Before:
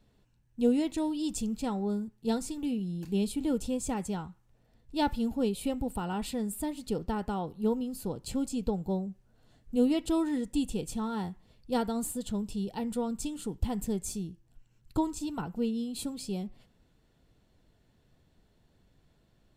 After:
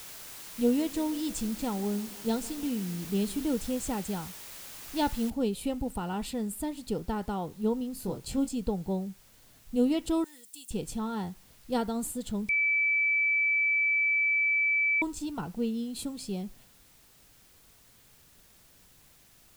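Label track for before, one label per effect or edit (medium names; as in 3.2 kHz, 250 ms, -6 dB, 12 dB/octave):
0.630000	3.440000	tape echo 157 ms, feedback 78%, level -19.5 dB
5.300000	5.300000	noise floor step -45 dB -60 dB
7.940000	8.510000	doubling 22 ms -5.5 dB
10.240000	10.710000	differentiator
12.490000	15.020000	bleep 2.31 kHz -23 dBFS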